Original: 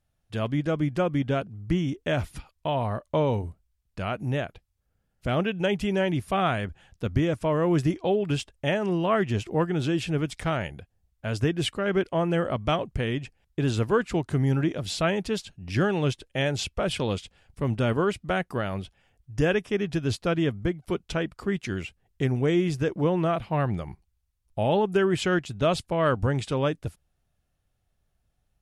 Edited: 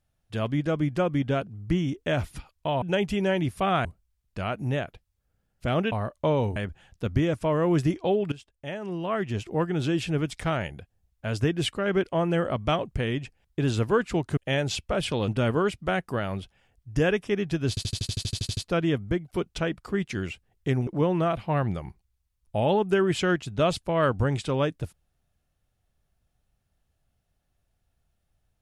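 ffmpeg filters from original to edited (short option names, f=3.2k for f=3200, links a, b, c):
-filter_complex "[0:a]asplit=20[a][b][c][d][e][f][g][h][i][j][k][l][m][n][o][p][q][r][s][t];[a]atrim=end=2.822[u];[b]atrim=start=5.528:end=6.562[v];[c]atrim=start=3.458:end=5.532[w];[d]atrim=start=2.818:end=3.462[x];[e]atrim=start=6.558:end=8.32,asetpts=PTS-STARTPTS,afade=t=out:st=1.758:d=0.004:c=hsin:silence=0.11885[y];[f]atrim=start=8.32:end=14.372,asetpts=PTS-STARTPTS,afade=t=in:d=1.56:silence=0.11885[z];[g]atrim=start=16.248:end=17.162[aa];[h]atrim=start=17.698:end=20.192[ab];[i]atrim=start=20.108:end=20.192[ac];[j]atrim=start=20.108:end=20.192[ad];[k]atrim=start=20.108:end=20.192[ae];[l]atrim=start=20.108:end=20.192[af];[m]atrim=start=20.108:end=20.192[ag];[n]atrim=start=20.108:end=20.192[ah];[o]atrim=start=20.108:end=20.192[ai];[p]atrim=start=20.108:end=20.192[aj];[q]atrim=start=20.108:end=20.192[ak];[r]atrim=start=20.108:end=20.192[al];[s]atrim=start=20.108:end=22.412[am];[t]atrim=start=22.898[an];[u][v]acrossfade=d=0.004:c1=hsin:c2=hsin[ao];[ao][w]acrossfade=d=0.004:c1=hsin:c2=hsin[ap];[ap][x]acrossfade=d=0.004:c1=hsin:c2=hsin[aq];[y][z]concat=n=2:v=0:a=1[ar];[aq][ar]acrossfade=d=0.004:c1=hsin:c2=hsin[as];[as][aa]acrossfade=d=0.004:c1=hsin:c2=hsin[at];[at][ab]acrossfade=d=0.004:c1=hsin:c2=hsin[au];[au][ac]acrossfade=d=0.004:c1=hsin:c2=hsin[av];[av][ad]acrossfade=d=0.004:c1=hsin:c2=hsin[aw];[aw][ae]acrossfade=d=0.004:c1=hsin:c2=hsin[ax];[ax][af]acrossfade=d=0.004:c1=hsin:c2=hsin[ay];[ay][ag]acrossfade=d=0.004:c1=hsin:c2=hsin[az];[az][ah]acrossfade=d=0.004:c1=hsin:c2=hsin[ba];[ba][ai]acrossfade=d=0.004:c1=hsin:c2=hsin[bb];[bb][aj]acrossfade=d=0.004:c1=hsin:c2=hsin[bc];[bc][ak]acrossfade=d=0.004:c1=hsin:c2=hsin[bd];[bd][al]acrossfade=d=0.004:c1=hsin:c2=hsin[be];[be][am]acrossfade=d=0.004:c1=hsin:c2=hsin[bf];[bf][an]acrossfade=d=0.004:c1=hsin:c2=hsin"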